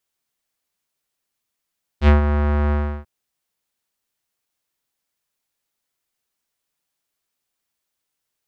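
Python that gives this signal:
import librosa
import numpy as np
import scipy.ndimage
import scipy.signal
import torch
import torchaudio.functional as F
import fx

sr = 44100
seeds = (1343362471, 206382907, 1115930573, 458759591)

y = fx.sub_voice(sr, note=38, wave='square', cutoff_hz=1500.0, q=1.3, env_oct=1.5, env_s=0.13, attack_ms=70.0, decay_s=0.13, sustain_db=-8.5, release_s=0.33, note_s=0.71, slope=12)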